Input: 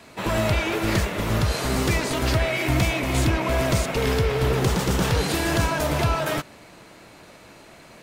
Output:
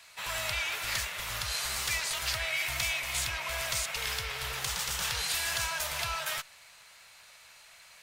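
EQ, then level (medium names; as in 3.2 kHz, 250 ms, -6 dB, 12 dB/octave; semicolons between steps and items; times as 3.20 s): amplifier tone stack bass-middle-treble 10-0-10; bass shelf 370 Hz -11 dB; 0.0 dB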